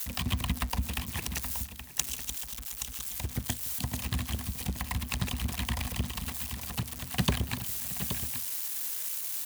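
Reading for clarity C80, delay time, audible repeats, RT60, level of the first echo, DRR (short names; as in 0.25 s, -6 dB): none, 0.287 s, 3, none, -19.0 dB, none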